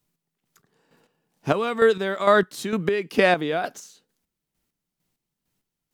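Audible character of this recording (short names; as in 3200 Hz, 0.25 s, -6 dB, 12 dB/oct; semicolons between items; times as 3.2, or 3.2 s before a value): chopped level 2.2 Hz, depth 60%, duty 35%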